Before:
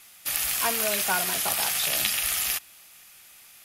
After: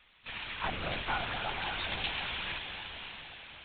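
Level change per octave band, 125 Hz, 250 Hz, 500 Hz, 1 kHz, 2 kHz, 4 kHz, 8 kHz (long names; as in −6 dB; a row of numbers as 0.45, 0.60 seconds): +2.5 dB, −4.5 dB, −8.5 dB, −5.0 dB, −5.0 dB, −7.5 dB, below −40 dB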